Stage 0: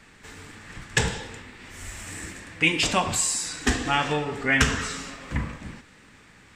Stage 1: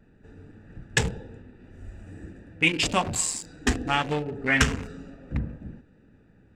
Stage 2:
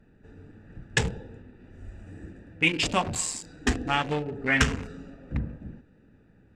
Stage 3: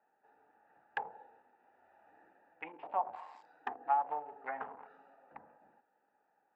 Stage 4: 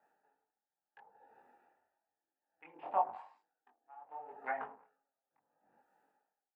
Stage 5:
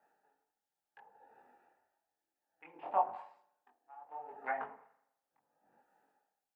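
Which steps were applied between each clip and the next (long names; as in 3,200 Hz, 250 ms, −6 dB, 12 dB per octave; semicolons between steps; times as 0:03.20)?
adaptive Wiener filter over 41 samples
high-shelf EQ 12,000 Hz −10.5 dB; level −1 dB
treble cut that deepens with the level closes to 780 Hz, closed at −21.5 dBFS; four-pole ladder band-pass 900 Hz, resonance 70%; level +3 dB
multi-voice chorus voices 2, 0.87 Hz, delay 22 ms, depth 3.6 ms; tremolo with a sine in dB 0.67 Hz, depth 33 dB; level +5.5 dB
convolution reverb RT60 0.85 s, pre-delay 40 ms, DRR 17 dB; level +1 dB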